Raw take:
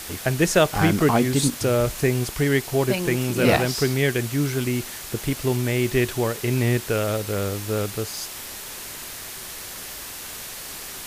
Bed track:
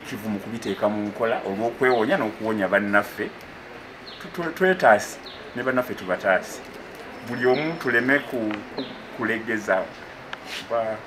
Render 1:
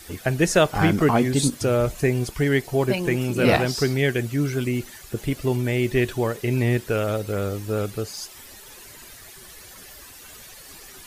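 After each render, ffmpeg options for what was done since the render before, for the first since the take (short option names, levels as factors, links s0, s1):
-af "afftdn=nr=12:nf=-36"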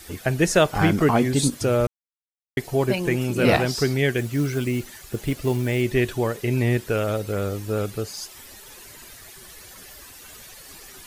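-filter_complex "[0:a]asettb=1/sr,asplit=3[s0][s1][s2];[s0]atrim=end=4.174[s3];[s1]atrim=start=4.17:end=5.82,asetpts=PTS-STARTPTS,afade=t=in:d=0.004:c=qsin,afade=t=out:st=1.646:d=0.004:c=qsin,acrusher=bits=6:mode=log:mix=0:aa=0.000001[s4];[s2]atrim=start=5.816[s5];[s3][s4]acrossfade=d=0.004:c1=hsin:c2=qsin[s6];[s6][s5]acrossfade=d=0.004:c1=qsin:c2=hsin,asplit=3[s7][s8][s9];[s7]atrim=end=1.87,asetpts=PTS-STARTPTS,afade=t=out:st=1.866:d=0.004:c=hsin[s10];[s8]atrim=start=1.87:end=2.57,asetpts=PTS-STARTPTS,volume=0[s11];[s9]atrim=start=2.57,asetpts=PTS-STARTPTS,afade=t=in:d=0.004:c=hsin[s12];[s10][s11][s12]concat=n=3:v=0:a=1"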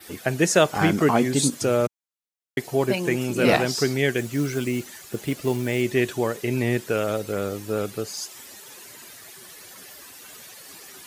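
-af "highpass=150,adynamicequalizer=threshold=0.00501:dfrequency=6900:dqfactor=2.2:tfrequency=6900:tqfactor=2.2:attack=5:release=100:ratio=0.375:range=2:mode=boostabove:tftype=bell"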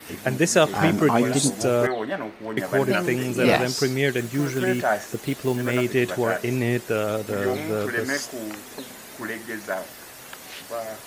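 -filter_complex "[1:a]volume=0.447[s0];[0:a][s0]amix=inputs=2:normalize=0"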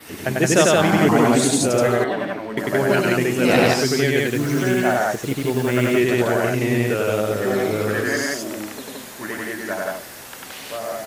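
-af "aecho=1:1:96.21|172:0.891|0.891"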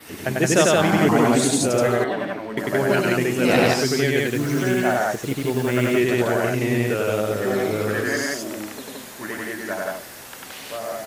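-af "volume=0.841"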